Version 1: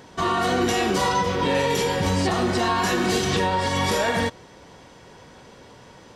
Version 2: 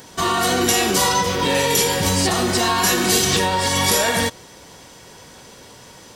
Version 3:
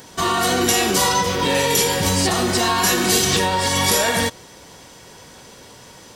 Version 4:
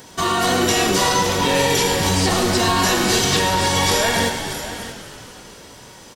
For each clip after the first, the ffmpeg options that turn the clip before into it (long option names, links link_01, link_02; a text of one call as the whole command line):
ffmpeg -i in.wav -af "aemphasis=mode=production:type=75fm,volume=2.5dB" out.wav
ffmpeg -i in.wav -af anull out.wav
ffmpeg -i in.wav -filter_complex "[0:a]asplit=2[link_01][link_02];[link_02]aecho=0:1:108|630:0.299|0.2[link_03];[link_01][link_03]amix=inputs=2:normalize=0,acrossover=split=6800[link_04][link_05];[link_05]acompressor=threshold=-29dB:ratio=4:attack=1:release=60[link_06];[link_04][link_06]amix=inputs=2:normalize=0,asplit=2[link_07][link_08];[link_08]asplit=7[link_09][link_10][link_11][link_12][link_13][link_14][link_15];[link_09]adelay=244,afreqshift=-86,volume=-11dB[link_16];[link_10]adelay=488,afreqshift=-172,volume=-15.6dB[link_17];[link_11]adelay=732,afreqshift=-258,volume=-20.2dB[link_18];[link_12]adelay=976,afreqshift=-344,volume=-24.7dB[link_19];[link_13]adelay=1220,afreqshift=-430,volume=-29.3dB[link_20];[link_14]adelay=1464,afreqshift=-516,volume=-33.9dB[link_21];[link_15]adelay=1708,afreqshift=-602,volume=-38.5dB[link_22];[link_16][link_17][link_18][link_19][link_20][link_21][link_22]amix=inputs=7:normalize=0[link_23];[link_07][link_23]amix=inputs=2:normalize=0" out.wav